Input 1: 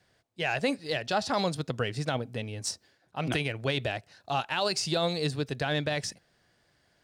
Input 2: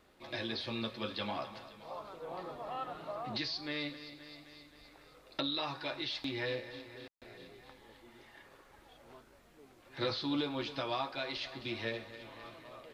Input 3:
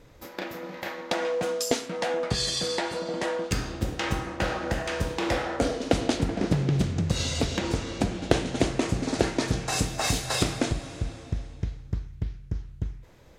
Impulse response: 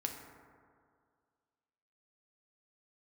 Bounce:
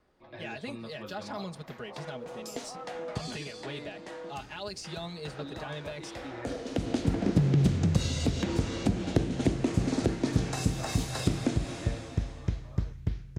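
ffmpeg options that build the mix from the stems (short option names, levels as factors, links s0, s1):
-filter_complex "[0:a]aecho=1:1:4.8:0.99,volume=0.2,asplit=2[s0][s1];[1:a]lowpass=1000,crystalizer=i=8:c=0,volume=0.531[s2];[2:a]highpass=f=120:p=1,adelay=850,volume=1.12[s3];[s1]apad=whole_len=627823[s4];[s3][s4]sidechaincompress=threshold=0.00178:ratio=10:attack=16:release=829[s5];[s0][s2][s5]amix=inputs=3:normalize=0,lowshelf=f=140:g=5.5,acrossover=split=340[s6][s7];[s7]acompressor=threshold=0.02:ratio=10[s8];[s6][s8]amix=inputs=2:normalize=0"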